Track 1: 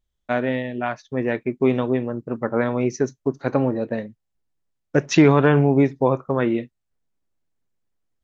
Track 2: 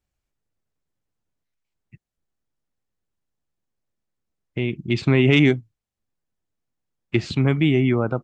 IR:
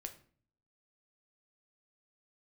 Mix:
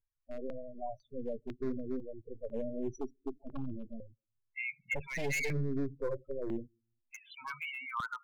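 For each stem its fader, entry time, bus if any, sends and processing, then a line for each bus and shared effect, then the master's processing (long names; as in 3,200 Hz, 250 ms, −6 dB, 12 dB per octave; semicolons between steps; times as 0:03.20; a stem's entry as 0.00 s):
−9.0 dB, 0.00 s, send −21.5 dB, gain on one half-wave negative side −12 dB; graphic EQ with 15 bands 100 Hz +4 dB, 630 Hz +3 dB, 1,600 Hz −8 dB; pitch vibrato 14 Hz 15 cents
+2.5 dB, 0.00 s, send −10 dB, elliptic band-pass filter 930–3,400 Hz, stop band 40 dB; spectral tilt −3 dB per octave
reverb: on, RT60 0.45 s, pre-delay 7 ms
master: spectral peaks only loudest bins 8; hard clipping −27.5 dBFS, distortion −9 dB; step-sequenced phaser 2 Hz 210–4,600 Hz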